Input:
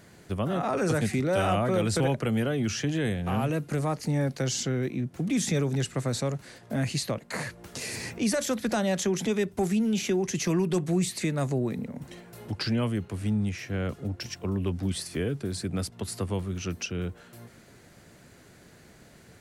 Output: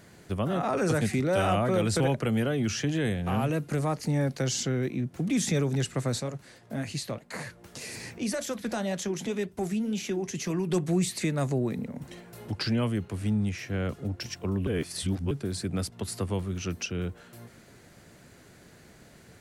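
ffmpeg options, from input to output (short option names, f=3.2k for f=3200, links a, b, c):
-filter_complex "[0:a]asplit=3[a][b][c];[a]afade=t=out:st=6.18:d=0.02[d];[b]flanger=delay=3.4:depth=6.1:regen=-74:speed=1.9:shape=triangular,afade=t=in:st=6.18:d=0.02,afade=t=out:st=10.67:d=0.02[e];[c]afade=t=in:st=10.67:d=0.02[f];[d][e][f]amix=inputs=3:normalize=0,asplit=3[g][h][i];[g]atrim=end=14.672[j];[h]atrim=start=14.668:end=15.312,asetpts=PTS-STARTPTS,areverse[k];[i]atrim=start=15.308[l];[j][k]acrossfade=d=0.004:c1=hsin:c2=hsin[m];[m][l]acrossfade=d=0.004:c1=hsin:c2=hsin"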